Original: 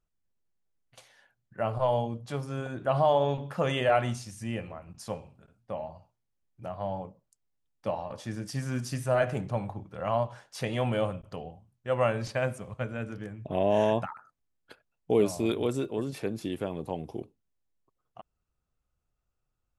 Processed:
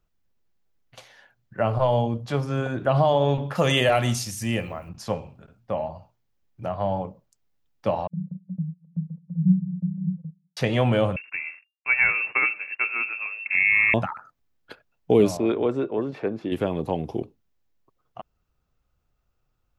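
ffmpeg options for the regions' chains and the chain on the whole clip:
-filter_complex "[0:a]asettb=1/sr,asplit=3[s0][s1][s2];[s0]atrim=end=3.554[s3];[s1]atrim=start=3.55:end=4.89,asetpts=PTS-STARTPTS,afade=t=in:d=0.004:c=qsin,afade=t=out:st=1.336:d=0.004:c=qsin,aemphasis=mode=production:type=75fm,bandreject=f=1500:w=23[s4];[s2]atrim=start=4.886[s5];[s3][s4]acrossfade=d=0.004:c1=hsin:c2=qsin[s6];[s6][s5]acrossfade=d=0.004:c1=qsin:c2=hsin,asettb=1/sr,asplit=3[s7][s8][s9];[s7]atrim=end=8.074[s10];[s8]atrim=start=8.07:end=10.57,asetpts=PTS-STARTPTS,afade=t=in:d=0.004:c=qsin,afade=t=out:st=2.496:d=0.004:c=qsin,aeval=exprs='0.188*sin(PI/2*5.01*val(0)/0.188)':c=same,asuperpass=centerf=170:order=20:qfactor=4.6,agate=range=0.178:threshold=0.00631:ratio=16:release=100:detection=peak[s11];[s9]atrim=start=10.566[s12];[s10][s11]acrossfade=d=0.004:c1=hsin:c2=qsin[s13];[s13][s12]acrossfade=d=0.004:c1=qsin:c2=hsin,asettb=1/sr,asplit=3[s14][s15][s16];[s14]atrim=end=11.164[s17];[s15]atrim=start=11.16:end=13.94,asetpts=PTS-STARTPTS,afade=t=in:d=0.004:c=qsin,afade=t=out:st=2.776:d=0.004:c=qsin,aeval=exprs='sgn(val(0))*max(abs(val(0))-0.00158,0)':c=same,lowpass=f=2400:t=q:w=0.5098,lowpass=f=2400:t=q:w=0.6013,lowpass=f=2400:t=q:w=0.9,lowpass=f=2400:t=q:w=2.563,afreqshift=-2800[s18];[s16]atrim=start=13.936[s19];[s17][s18]acrossfade=d=0.004:c1=hsin:c2=qsin[s20];[s20][s19]acrossfade=d=0.004:c1=qsin:c2=hsin,asettb=1/sr,asplit=3[s21][s22][s23];[s21]atrim=end=15.374[s24];[s22]atrim=start=15.37:end=16.52,asetpts=PTS-STARTPTS,afade=t=in:d=0.004:c=qsin,afade=t=out:st=1.146:d=0.004:c=qsin,lowpass=1500,aemphasis=mode=production:type=bsi[s25];[s23]atrim=start=16.516[s26];[s24][s25]acrossfade=d=0.004:c1=hsin:c2=qsin[s27];[s27][s26]acrossfade=d=0.004:c1=qsin:c2=hsin,equalizer=f=9300:t=o:w=0.76:g=-10,acrossover=split=360|3000[s28][s29][s30];[s29]acompressor=threshold=0.0316:ratio=2.5[s31];[s28][s31][s30]amix=inputs=3:normalize=0,volume=2.66"

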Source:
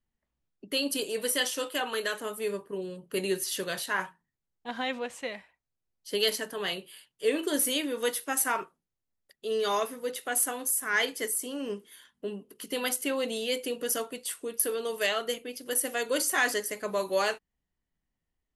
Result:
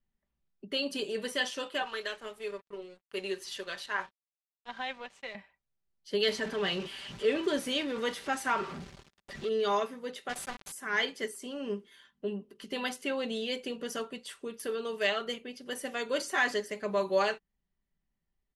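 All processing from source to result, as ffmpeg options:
-filter_complex "[0:a]asettb=1/sr,asplit=3[s0][s1][s2];[s0]atrim=end=1.824[s3];[s1]atrim=start=1.82:end=5.35,asetpts=PTS-STARTPTS,afade=t=in:d=0.004:c=qsin,afade=t=out:st=3.526:d=0.004:c=qsin,highpass=280,lowshelf=f=500:g=-7.5,aeval=exprs='sgn(val(0))*max(abs(val(0))-0.00316,0)':c=same[s4];[s2]atrim=start=5.346[s5];[s3][s4]acrossfade=d=0.004:c1=hsin:c2=qsin[s6];[s6][s5]acrossfade=d=0.004:c1=qsin:c2=hsin,asettb=1/sr,asplit=3[s7][s8][s9];[s7]atrim=end=6.244[s10];[s8]atrim=start=6.24:end=9.49,asetpts=PTS-STARTPTS,afade=t=in:d=0.004:c=qsin,afade=t=out:st=3.246:d=0.004:c=qsin,aeval=exprs='val(0)+0.5*0.02*sgn(val(0))':c=same,highpass=46,highshelf=f=9600:g=-5[s11];[s9]atrim=start=9.486[s12];[s10][s11]acrossfade=d=0.004:c1=hsin:c2=qsin[s13];[s13][s12]acrossfade=d=0.004:c1=qsin:c2=hsin,asettb=1/sr,asplit=3[s14][s15][s16];[s14]atrim=end=10.294[s17];[s15]atrim=start=10.29:end=10.72,asetpts=PTS-STARTPTS,afade=t=in:d=0.004:c=qsin,afade=t=out:st=0.426:d=0.004:c=qsin,highpass=310,aeval=exprs='val(0)*gte(abs(val(0)),0.0299)':c=same[s18];[s16]atrim=start=10.716[s19];[s17][s18]acrossfade=d=0.004:c1=hsin:c2=qsin[s20];[s20][s19]acrossfade=d=0.004:c1=qsin:c2=hsin,lowpass=5100,bass=f=250:g=3,treble=f=4000:g=-1,aecho=1:1:5.1:0.41,volume=0.75"

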